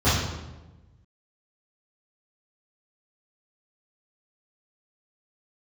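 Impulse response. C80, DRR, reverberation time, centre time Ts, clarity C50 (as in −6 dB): 4.0 dB, −14.5 dB, 1.1 s, 72 ms, 0.0 dB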